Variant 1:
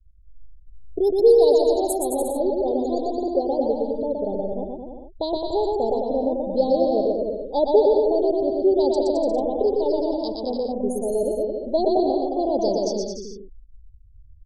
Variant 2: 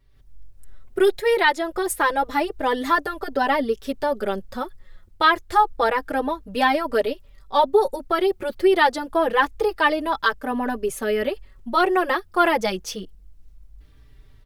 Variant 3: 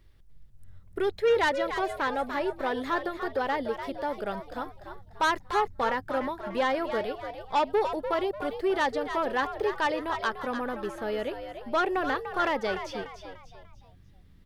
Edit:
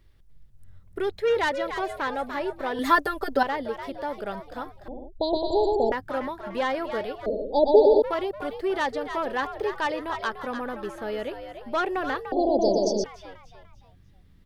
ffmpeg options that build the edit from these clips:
-filter_complex "[0:a]asplit=3[a][b][c];[2:a]asplit=5[d][e][f][g][h];[d]atrim=end=2.792[i];[1:a]atrim=start=2.788:end=3.432[j];[e]atrim=start=3.428:end=4.882[k];[a]atrim=start=4.878:end=5.922[l];[f]atrim=start=5.918:end=7.262[m];[b]atrim=start=7.258:end=8.022[n];[g]atrim=start=8.018:end=12.322[o];[c]atrim=start=12.318:end=13.042[p];[h]atrim=start=13.038[q];[i][j]acrossfade=d=0.004:c1=hsin:c2=hsin[r];[r][k]acrossfade=d=0.004:c1=hsin:c2=hsin[s];[s][l]acrossfade=d=0.004:c1=hsin:c2=hsin[t];[t][m]acrossfade=d=0.004:c1=hsin:c2=hsin[u];[u][n]acrossfade=d=0.004:c1=hsin:c2=hsin[v];[v][o]acrossfade=d=0.004:c1=hsin:c2=hsin[w];[w][p]acrossfade=d=0.004:c1=hsin:c2=hsin[x];[x][q]acrossfade=d=0.004:c1=hsin:c2=hsin"

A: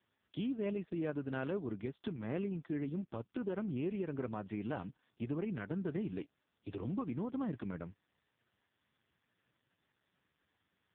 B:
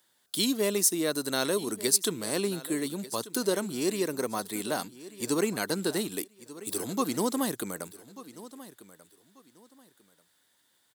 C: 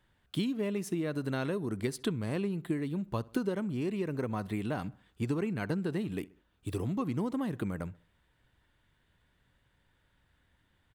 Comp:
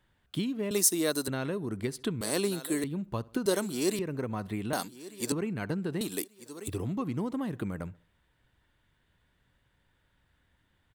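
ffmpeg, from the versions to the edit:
-filter_complex "[1:a]asplit=5[a][b][c][d][e];[2:a]asplit=6[f][g][h][i][j][k];[f]atrim=end=0.712[l];[a]atrim=start=0.708:end=1.282[m];[g]atrim=start=1.278:end=2.212[n];[b]atrim=start=2.208:end=2.842[o];[h]atrim=start=2.838:end=3.462[p];[c]atrim=start=3.458:end=3.992[q];[i]atrim=start=3.988:end=4.732[r];[d]atrim=start=4.728:end=5.322[s];[j]atrim=start=5.318:end=6.012[t];[e]atrim=start=6.008:end=6.682[u];[k]atrim=start=6.678[v];[l][m]acrossfade=d=0.004:c1=hsin:c2=hsin[w];[w][n]acrossfade=d=0.004:c1=hsin:c2=hsin[x];[x][o]acrossfade=d=0.004:c1=hsin:c2=hsin[y];[y][p]acrossfade=d=0.004:c1=hsin:c2=hsin[z];[z][q]acrossfade=d=0.004:c1=hsin:c2=hsin[aa];[aa][r]acrossfade=d=0.004:c1=hsin:c2=hsin[ab];[ab][s]acrossfade=d=0.004:c1=hsin:c2=hsin[ac];[ac][t]acrossfade=d=0.004:c1=hsin:c2=hsin[ad];[ad][u]acrossfade=d=0.004:c1=hsin:c2=hsin[ae];[ae][v]acrossfade=d=0.004:c1=hsin:c2=hsin"

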